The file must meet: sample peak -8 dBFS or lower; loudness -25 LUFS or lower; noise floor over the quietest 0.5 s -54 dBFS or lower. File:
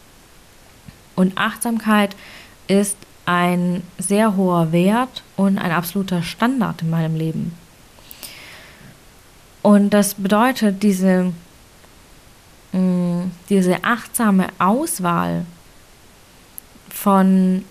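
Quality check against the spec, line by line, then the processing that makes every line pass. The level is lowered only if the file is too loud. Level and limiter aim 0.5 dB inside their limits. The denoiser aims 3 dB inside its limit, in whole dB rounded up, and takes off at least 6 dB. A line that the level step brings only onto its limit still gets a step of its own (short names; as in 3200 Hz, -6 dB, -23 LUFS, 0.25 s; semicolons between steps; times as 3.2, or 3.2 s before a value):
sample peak -4.5 dBFS: fail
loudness -18.0 LUFS: fail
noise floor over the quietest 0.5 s -47 dBFS: fail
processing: gain -7.5 dB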